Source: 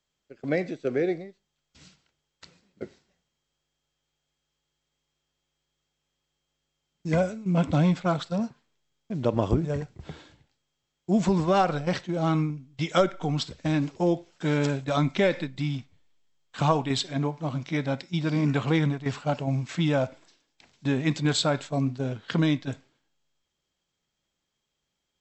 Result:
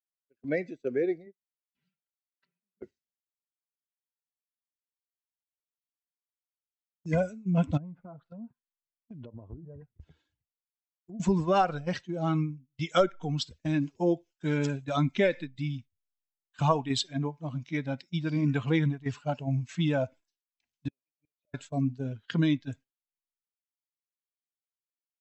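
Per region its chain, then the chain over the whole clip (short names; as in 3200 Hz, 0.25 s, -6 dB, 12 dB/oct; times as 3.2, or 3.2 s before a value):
1.26–2.83 BPF 130–2400 Hz + comb 5.1 ms, depth 81%
7.77–11.2 treble ducked by the level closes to 1100 Hz, closed at -23 dBFS + compressor, threshold -33 dBFS
20.88–21.54 double band-pass 1200 Hz, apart 2 oct + tilt -3 dB/oct + flipped gate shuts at -35 dBFS, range -32 dB
whole clip: per-bin expansion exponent 1.5; gate -48 dBFS, range -10 dB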